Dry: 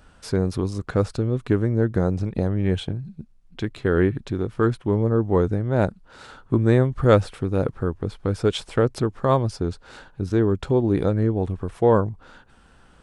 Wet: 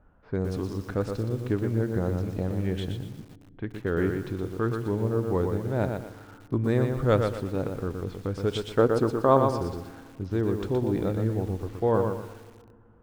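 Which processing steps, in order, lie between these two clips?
low-pass that shuts in the quiet parts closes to 1,100 Hz, open at −18.5 dBFS
gain on a spectral selection 0:08.78–0:09.56, 220–1,600 Hz +7 dB
low-pass that shuts in the quiet parts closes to 2,900 Hz, open at −15.5 dBFS
feedback delay network reverb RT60 2.2 s, low-frequency decay 1.55×, high-frequency decay 0.6×, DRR 17 dB
feedback echo at a low word length 120 ms, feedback 35%, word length 7 bits, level −5 dB
level −7 dB

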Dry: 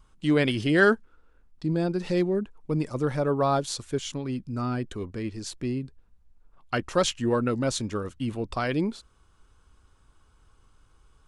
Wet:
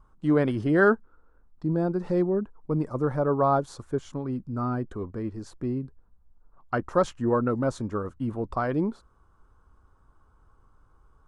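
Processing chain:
high shelf with overshoot 1,800 Hz −13 dB, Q 1.5

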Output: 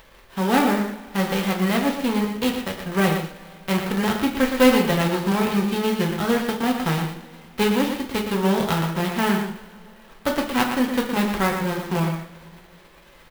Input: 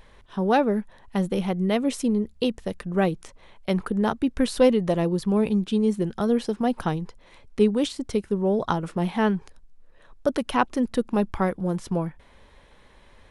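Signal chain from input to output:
spectral envelope flattened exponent 0.3
high-frequency loss of the air 170 metres
slap from a distant wall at 20 metres, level −7 dB
coupled-rooms reverb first 0.38 s, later 2.9 s, from −22 dB, DRR 0.5 dB
converter with an unsteady clock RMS 0.025 ms

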